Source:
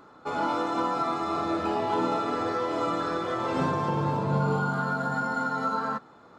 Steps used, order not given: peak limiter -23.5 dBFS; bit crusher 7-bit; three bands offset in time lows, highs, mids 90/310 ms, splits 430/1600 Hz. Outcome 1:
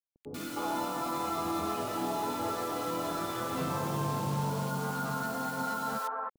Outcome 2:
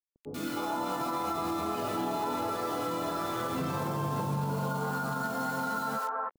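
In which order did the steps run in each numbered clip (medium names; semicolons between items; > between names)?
peak limiter > bit crusher > three bands offset in time; bit crusher > three bands offset in time > peak limiter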